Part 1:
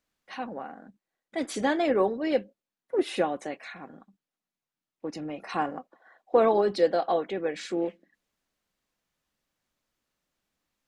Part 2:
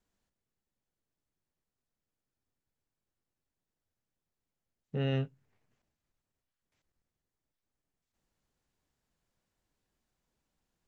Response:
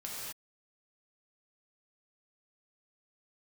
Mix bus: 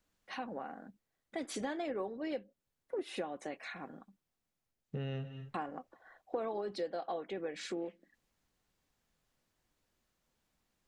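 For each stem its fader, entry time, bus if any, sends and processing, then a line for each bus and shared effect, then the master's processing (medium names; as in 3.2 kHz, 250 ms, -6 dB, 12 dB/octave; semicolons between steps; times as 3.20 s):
-2.5 dB, 0.00 s, muted 4.71–5.54 s, no send, none
-1.0 dB, 0.00 s, send -12 dB, none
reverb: on, pre-delay 3 ms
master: compression 4:1, threshold -37 dBFS, peak gain reduction 15 dB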